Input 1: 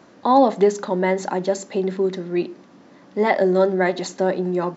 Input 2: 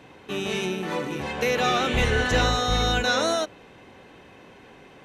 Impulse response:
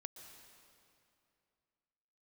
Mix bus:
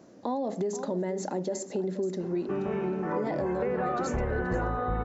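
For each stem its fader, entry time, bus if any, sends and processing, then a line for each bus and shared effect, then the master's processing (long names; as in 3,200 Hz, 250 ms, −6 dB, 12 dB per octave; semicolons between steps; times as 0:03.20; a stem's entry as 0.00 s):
−3.0 dB, 0.00 s, no send, echo send −13.5 dB, flat-topped bell 1,900 Hz −9 dB 2.6 octaves; brickwall limiter −17 dBFS, peak gain reduction 11 dB
+1.0 dB, 2.20 s, no send, no echo send, low-pass filter 1,500 Hz 24 dB per octave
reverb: not used
echo: single-tap delay 478 ms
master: downward compressor, threshold −26 dBFS, peak gain reduction 9.5 dB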